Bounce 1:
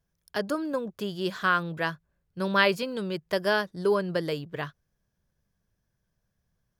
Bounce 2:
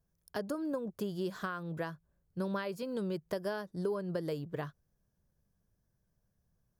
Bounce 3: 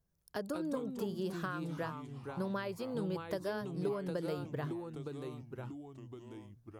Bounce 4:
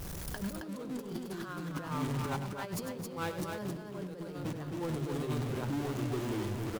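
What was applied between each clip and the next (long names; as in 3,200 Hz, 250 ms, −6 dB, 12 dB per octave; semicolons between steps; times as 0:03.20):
downward compressor 6 to 1, threshold −31 dBFS, peak gain reduction 14 dB; parametric band 2,700 Hz −10 dB 2.1 octaves
delay with pitch and tempo change per echo 128 ms, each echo −3 semitones, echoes 3, each echo −6 dB; level −2 dB
converter with a step at zero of −42.5 dBFS; compressor whose output falls as the input rises −41 dBFS, ratio −0.5; loudspeakers that aren't time-aligned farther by 34 metres −10 dB, 92 metres −5 dB; level +3.5 dB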